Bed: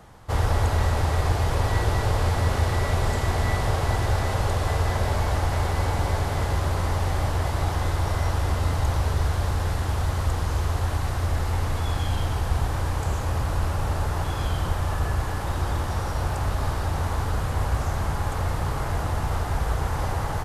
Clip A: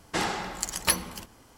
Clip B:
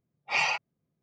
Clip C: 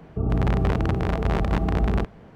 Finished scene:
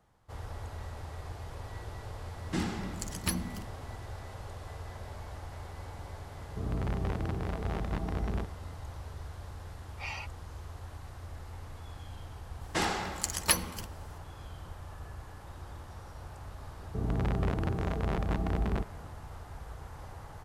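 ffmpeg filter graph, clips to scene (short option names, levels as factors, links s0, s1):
-filter_complex "[1:a]asplit=2[s0][s1];[3:a]asplit=2[s2][s3];[0:a]volume=0.106[s4];[s0]lowshelf=f=370:t=q:w=1.5:g=11.5,atrim=end=1.57,asetpts=PTS-STARTPTS,volume=0.316,afade=t=in:d=0.004:c=hsin,afade=t=out:st=1.566:d=0.004:c=hsin,adelay=2390[s5];[s2]atrim=end=2.35,asetpts=PTS-STARTPTS,volume=0.266,afade=t=in:d=0.004:c=hsin,afade=t=out:st=2.346:d=0.004:c=hsin,adelay=6400[s6];[2:a]atrim=end=1.02,asetpts=PTS-STARTPTS,volume=0.2,afade=t=in:d=0.004:c=hsin,afade=t=out:st=1.016:d=0.004:c=hsin,adelay=9690[s7];[s1]atrim=end=1.57,asetpts=PTS-STARTPTS,volume=0.794,afade=t=in:d=0.004:c=hsin,afade=t=out:st=1.566:d=0.004:c=hsin,adelay=12610[s8];[s3]atrim=end=2.35,asetpts=PTS-STARTPTS,volume=0.376,afade=t=in:d=0.004:c=hsin,afade=t=out:st=2.346:d=0.004:c=hsin,adelay=16780[s9];[s4][s5][s6][s7][s8][s9]amix=inputs=6:normalize=0"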